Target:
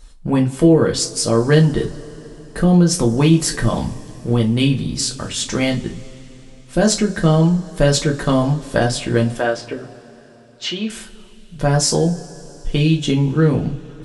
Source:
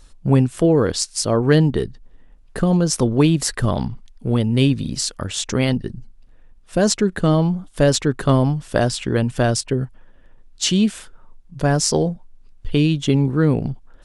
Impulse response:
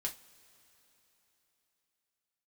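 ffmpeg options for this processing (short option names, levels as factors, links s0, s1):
-filter_complex "[0:a]asettb=1/sr,asplit=3[s0][s1][s2];[s0]atrim=end=9.374[s3];[s1]atrim=start=9.37:end=10.9,asetpts=PTS-STARTPTS,afade=t=in:d=0.004:c=qsin,afade=t=out:st=1.526:d=0.004:c=qsin,highpass=390,lowpass=2900[s4];[s2]atrim=start=10.896[s5];[s3][s4]acrossfade=d=0.004:c1=hsin:c2=qsin[s6];[s6][s5]acrossfade=d=0.004:c1=qsin:c2=hsin[s7];[1:a]atrim=start_sample=2205[s8];[s7][s8]afir=irnorm=-1:irlink=0,volume=1.26"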